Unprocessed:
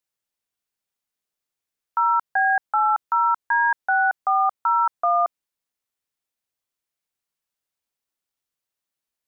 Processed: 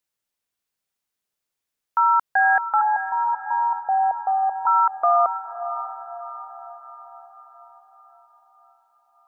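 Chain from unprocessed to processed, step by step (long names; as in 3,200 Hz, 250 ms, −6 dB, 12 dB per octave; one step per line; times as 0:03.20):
0:02.81–0:04.67: Butterworth low-pass 960 Hz 72 dB per octave
on a send: feedback delay with all-pass diffusion 562 ms, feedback 53%, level −11 dB
on the sum: level +2 dB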